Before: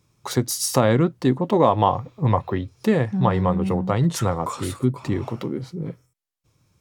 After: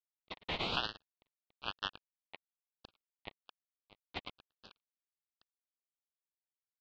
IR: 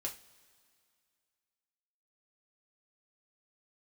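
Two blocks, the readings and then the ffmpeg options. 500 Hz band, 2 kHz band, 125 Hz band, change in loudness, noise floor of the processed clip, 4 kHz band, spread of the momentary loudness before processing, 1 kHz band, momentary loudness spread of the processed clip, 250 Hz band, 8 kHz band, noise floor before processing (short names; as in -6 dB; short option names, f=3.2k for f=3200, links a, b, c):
-29.5 dB, -11.5 dB, -34.5 dB, -18.0 dB, under -85 dBFS, -7.0 dB, 11 LU, -23.0 dB, 23 LU, -32.0 dB, -37.5 dB, -70 dBFS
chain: -filter_complex "[0:a]aderivative,asplit=5[a][b][c][d][e];[b]adelay=105,afreqshift=-74,volume=-5dB[f];[c]adelay=210,afreqshift=-148,volume=-14.6dB[g];[d]adelay=315,afreqshift=-222,volume=-24.3dB[h];[e]adelay=420,afreqshift=-296,volume=-33.9dB[i];[a][f][g][h][i]amix=inputs=5:normalize=0,acrusher=bits=3:mix=0:aa=0.5,highpass=f=280:t=q:w=0.5412,highpass=f=280:t=q:w=1.307,lowpass=f=2.4k:t=q:w=0.5176,lowpass=f=2.4k:t=q:w=0.7071,lowpass=f=2.4k:t=q:w=1.932,afreqshift=110,aeval=exprs='val(0)*sin(2*PI*1800*n/s+1800*0.25/1.1*sin(2*PI*1.1*n/s))':c=same,volume=9.5dB"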